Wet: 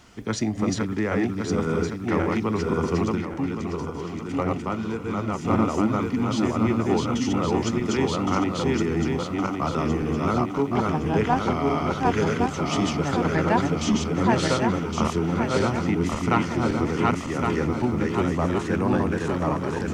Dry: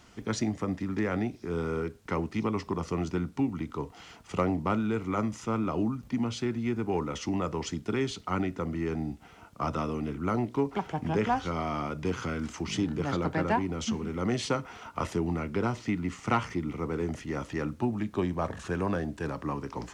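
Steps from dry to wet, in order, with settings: regenerating reverse delay 0.557 s, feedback 64%, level -1 dB; 3.15–5.45 flange 1.5 Hz, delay 0.8 ms, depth 6.9 ms, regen -69%; gain +4 dB

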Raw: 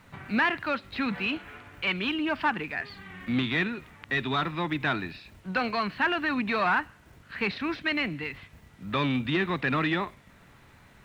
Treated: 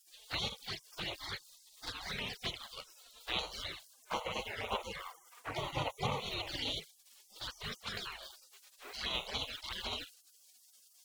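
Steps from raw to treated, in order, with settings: spectral gate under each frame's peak -30 dB weak; 3.93–6.2 graphic EQ 125/500/1000/2000/4000 Hz +10/+7/+11/+6/-8 dB; envelope flanger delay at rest 6.7 ms, full sweep at -46 dBFS; gain +13 dB

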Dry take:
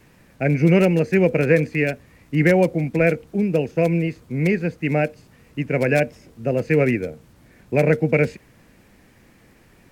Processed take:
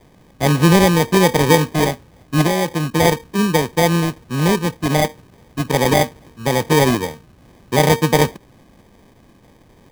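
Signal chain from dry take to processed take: 2.41–2.92 compressor 5:1, threshold -18 dBFS, peak gain reduction 6.5 dB; sample-and-hold 32×; gain +3.5 dB

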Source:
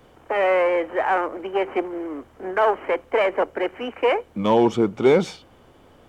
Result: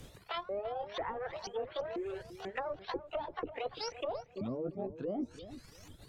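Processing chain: repeated pitch sweeps +12 st, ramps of 0.49 s; treble ducked by the level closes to 520 Hz, closed at -17.5 dBFS; EQ curve 100 Hz 0 dB, 980 Hz -16 dB, 6400 Hz +3 dB; reverse; compressor 6:1, threshold -41 dBFS, peak gain reduction 14.5 dB; reverse; reverb removal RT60 1.5 s; on a send: darkening echo 0.341 s, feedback 23%, low-pass 2700 Hz, level -13 dB; on the sum: gain +7 dB

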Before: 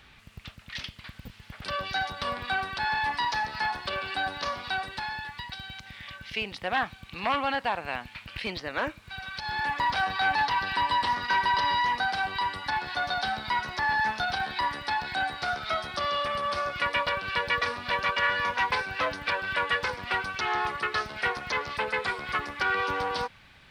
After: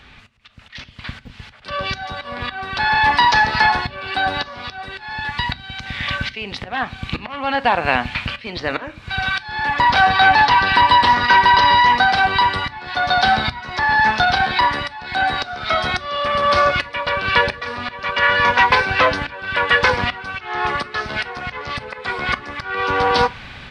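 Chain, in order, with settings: high shelf 3000 Hz +8.5 dB; in parallel at +2 dB: compressor, threshold -32 dBFS, peak gain reduction 12 dB; on the sum: auto swell 0.601 s; AGC gain up to 13 dB; tape spacing loss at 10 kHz 20 dB; on a send at -13 dB: reverb RT60 0.35 s, pre-delay 4 ms; on the sum: gain +2.5 dB

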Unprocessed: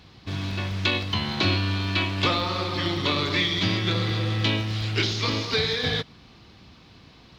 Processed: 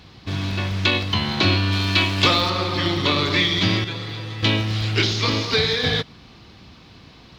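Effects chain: 1.72–2.5 high shelf 4300 Hz +8.5 dB; 3.84–4.43 resonator 140 Hz, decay 0.16 s, harmonics all, mix 90%; gain +4.5 dB

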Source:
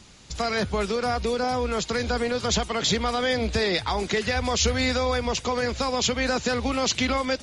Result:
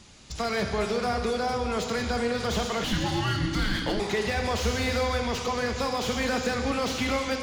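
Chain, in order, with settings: plate-style reverb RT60 2.1 s, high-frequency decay 0.9×, DRR 4 dB; in parallel at -9 dB: soft clip -25.5 dBFS, distortion -9 dB; 2.84–4 on the sum: frequency shift -390 Hz; slew limiter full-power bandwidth 180 Hz; gain -4.5 dB

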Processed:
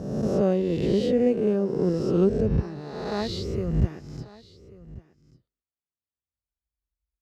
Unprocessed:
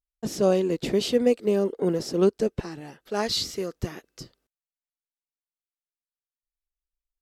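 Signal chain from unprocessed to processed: spectral swells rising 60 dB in 1.30 s; HPF 55 Hz 24 dB/oct; RIAA curve playback; echo 1.139 s -20 dB; gain -6.5 dB

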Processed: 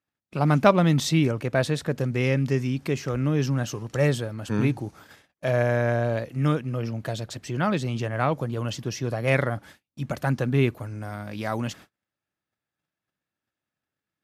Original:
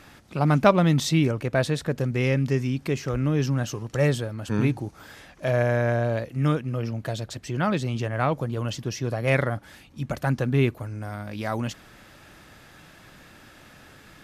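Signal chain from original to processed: HPF 78 Hz; gate -44 dBFS, range -39 dB

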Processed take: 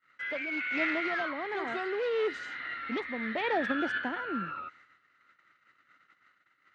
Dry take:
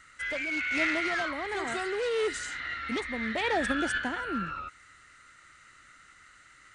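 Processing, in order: HPF 190 Hz 12 dB/oct; gate -54 dBFS, range -25 dB; air absorption 250 m

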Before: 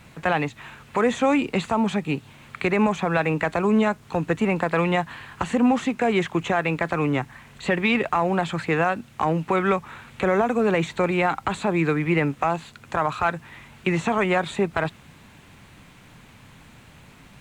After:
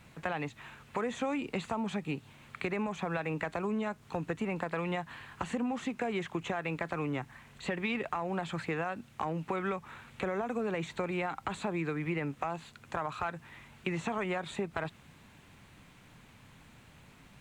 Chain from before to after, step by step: compressor, threshold -22 dBFS, peak gain reduction 8 dB; gain -8 dB

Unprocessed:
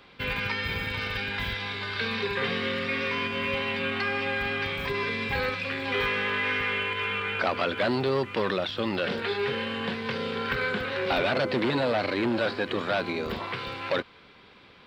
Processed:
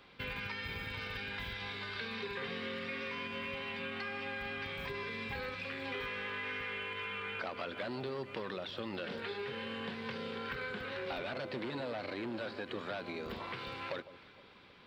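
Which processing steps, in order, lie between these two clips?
compressor 3:1, threshold -33 dBFS, peak gain reduction 9 dB; on a send: echo with dull and thin repeats by turns 0.155 s, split 850 Hz, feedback 58%, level -13.5 dB; on the sum: gain -6 dB

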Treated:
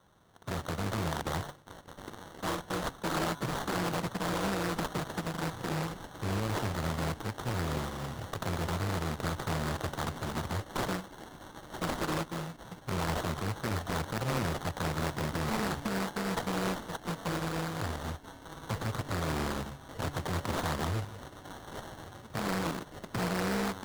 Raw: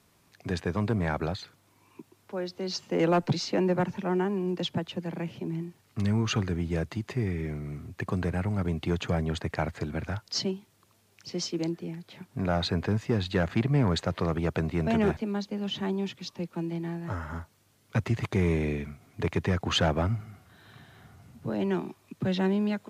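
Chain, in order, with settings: FFT order left unsorted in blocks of 64 samples; HPF 52 Hz 12 dB/oct; de-hum 148.9 Hz, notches 29; limiter -23 dBFS, peak gain reduction 9 dB; narrowing echo 1.146 s, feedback 73%, band-pass 2500 Hz, level -3.5 dB; speed mistake 25 fps video run at 24 fps; sample-and-hold 18×; Doppler distortion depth 0.7 ms

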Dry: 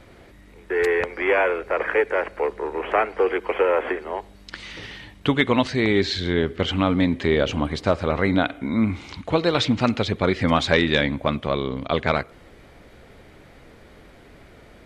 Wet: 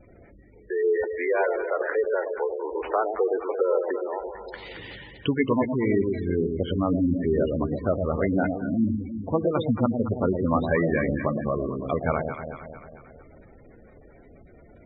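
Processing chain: treble ducked by the level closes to 2200 Hz, closed at -20 dBFS; echo with dull and thin repeats by turns 0.112 s, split 830 Hz, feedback 73%, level -5 dB; spectral gate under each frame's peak -15 dB strong; gain -3.5 dB

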